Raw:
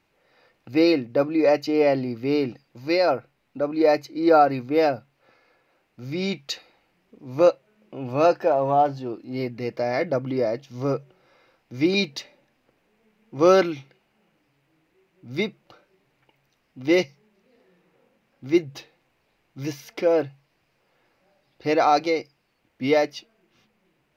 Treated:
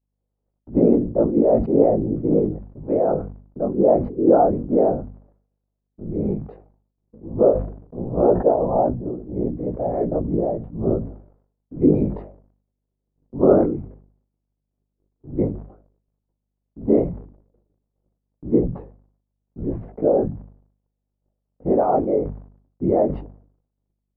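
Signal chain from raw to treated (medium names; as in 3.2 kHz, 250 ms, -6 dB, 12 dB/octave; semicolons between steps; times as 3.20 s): whisper effect; chorus 0.11 Hz, delay 16.5 ms, depth 4.5 ms; crackle 91 per s -40 dBFS; Bessel low-pass 520 Hz, order 4; hum 50 Hz, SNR 30 dB; gate -56 dBFS, range -27 dB; decay stretcher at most 96 dB/s; trim +8 dB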